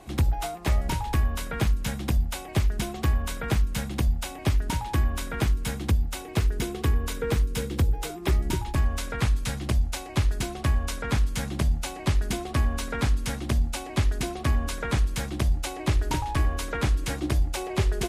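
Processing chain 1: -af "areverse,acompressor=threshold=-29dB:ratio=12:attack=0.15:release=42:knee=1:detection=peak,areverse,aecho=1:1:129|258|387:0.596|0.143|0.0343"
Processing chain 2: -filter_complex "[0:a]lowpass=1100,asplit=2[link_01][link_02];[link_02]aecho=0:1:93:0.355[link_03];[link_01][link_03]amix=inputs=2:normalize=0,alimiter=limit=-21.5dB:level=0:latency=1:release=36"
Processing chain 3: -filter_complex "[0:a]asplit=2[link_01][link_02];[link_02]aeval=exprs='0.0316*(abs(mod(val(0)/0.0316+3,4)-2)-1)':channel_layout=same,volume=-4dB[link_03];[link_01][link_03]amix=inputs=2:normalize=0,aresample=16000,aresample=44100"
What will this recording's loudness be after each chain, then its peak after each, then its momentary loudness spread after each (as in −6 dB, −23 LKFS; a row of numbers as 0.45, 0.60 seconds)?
−34.0, −31.5, −27.0 LKFS; −23.0, −21.5, −14.5 dBFS; 1, 2, 2 LU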